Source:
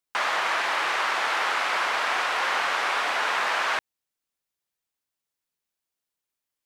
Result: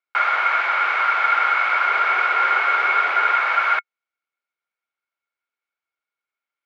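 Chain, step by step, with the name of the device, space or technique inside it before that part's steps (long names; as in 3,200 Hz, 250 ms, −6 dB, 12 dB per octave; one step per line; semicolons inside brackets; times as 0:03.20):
0:01.89–0:03.32: parametric band 390 Hz +8.5 dB 0.47 octaves
tin-can telephone (band-pass filter 420–2,900 Hz; hollow resonant body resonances 1,400/2,200 Hz, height 18 dB, ringing for 45 ms)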